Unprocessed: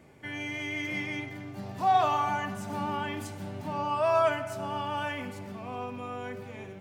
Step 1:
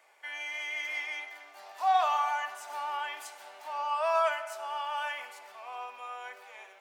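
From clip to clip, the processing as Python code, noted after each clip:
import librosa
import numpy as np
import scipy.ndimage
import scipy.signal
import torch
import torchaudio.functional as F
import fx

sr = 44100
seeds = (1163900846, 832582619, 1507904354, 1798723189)

y = scipy.signal.sosfilt(scipy.signal.butter(4, 700.0, 'highpass', fs=sr, output='sos'), x)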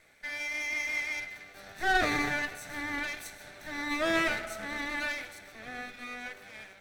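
y = fx.lower_of_two(x, sr, delay_ms=0.5)
y = F.gain(torch.from_numpy(y), 3.0).numpy()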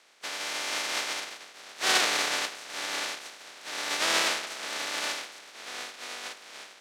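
y = fx.spec_flatten(x, sr, power=0.18)
y = fx.bandpass_edges(y, sr, low_hz=380.0, high_hz=5600.0)
y = F.gain(torch.from_numpy(y), 6.0).numpy()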